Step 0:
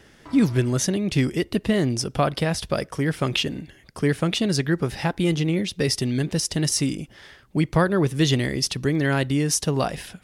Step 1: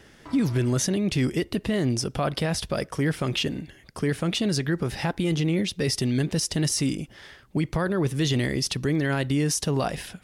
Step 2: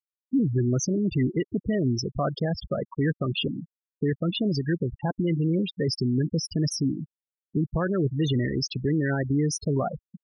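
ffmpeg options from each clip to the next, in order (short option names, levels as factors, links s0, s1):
-af "alimiter=limit=0.158:level=0:latency=1:release=18"
-af "afftfilt=real='re*gte(hypot(re,im),0.112)':imag='im*gte(hypot(re,im),0.112)':win_size=1024:overlap=0.75"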